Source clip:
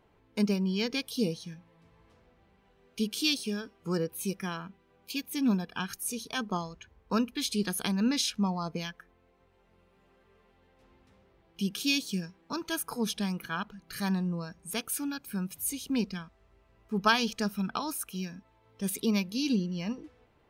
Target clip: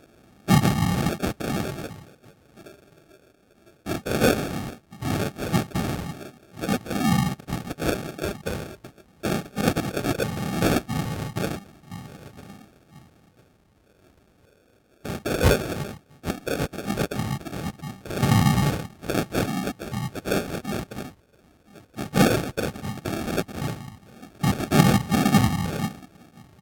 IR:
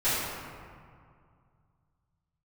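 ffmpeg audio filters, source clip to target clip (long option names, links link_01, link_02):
-filter_complex "[0:a]highshelf=frequency=7900:gain=5.5,bandreject=frequency=3200:width=17,asplit=2[link_01][link_02];[link_02]asoftclip=type=hard:threshold=-31dB,volume=-5dB[link_03];[link_01][link_03]amix=inputs=2:normalize=0,equalizer=frequency=4700:width=0.6:gain=7.5,asplit=2[link_04][link_05];[link_05]adelay=779,lowpass=frequency=1100:poles=1,volume=-20dB,asplit=2[link_06][link_07];[link_07]adelay=779,lowpass=frequency=1100:poles=1,volume=0.3[link_08];[link_06][link_08]amix=inputs=2:normalize=0[link_09];[link_04][link_09]amix=inputs=2:normalize=0,aphaser=in_gain=1:out_gain=1:delay=2:decay=0.67:speed=0.21:type=sinusoidal,afftfilt=real='hypot(re,im)*cos(2*PI*random(0))':imag='hypot(re,im)*sin(2*PI*random(1))':win_size=512:overlap=0.75,acrusher=samples=34:mix=1:aa=0.000001,highpass=frequency=140:poles=1,asetrate=33957,aresample=44100,volume=6dB"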